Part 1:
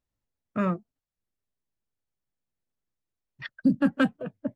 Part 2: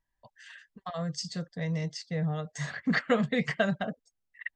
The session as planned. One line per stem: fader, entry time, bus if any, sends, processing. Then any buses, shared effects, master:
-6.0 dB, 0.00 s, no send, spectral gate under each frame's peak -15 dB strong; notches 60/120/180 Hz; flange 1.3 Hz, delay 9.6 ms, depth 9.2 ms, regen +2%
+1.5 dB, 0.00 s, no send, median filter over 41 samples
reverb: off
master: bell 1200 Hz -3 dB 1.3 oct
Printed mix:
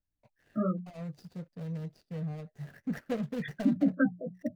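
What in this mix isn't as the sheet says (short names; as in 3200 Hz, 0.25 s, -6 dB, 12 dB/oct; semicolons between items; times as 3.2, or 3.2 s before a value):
stem 1 -6.0 dB -> +1.0 dB; stem 2 +1.5 dB -> -5.5 dB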